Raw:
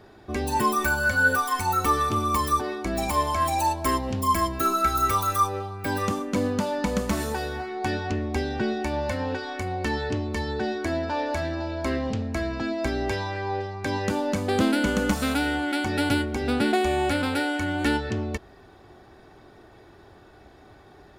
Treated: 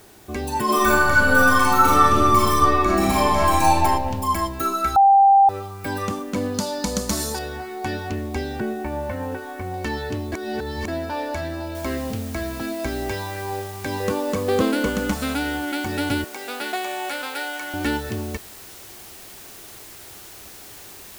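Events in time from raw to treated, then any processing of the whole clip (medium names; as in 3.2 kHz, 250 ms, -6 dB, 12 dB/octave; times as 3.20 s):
0.64–3.81 s: reverb throw, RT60 1.5 s, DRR -7.5 dB
4.96–5.49 s: bleep 789 Hz -9.5 dBFS
6.54–7.39 s: resonant high shelf 3.5 kHz +9.5 dB, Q 1.5
8.60–9.74 s: low-pass 1.9 kHz
10.32–10.88 s: reverse
11.75 s: noise floor step -52 dB -42 dB
14.00–14.89 s: small resonant body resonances 470/1100 Hz, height 15 dB, ringing for 70 ms
16.24–17.74 s: high-pass 620 Hz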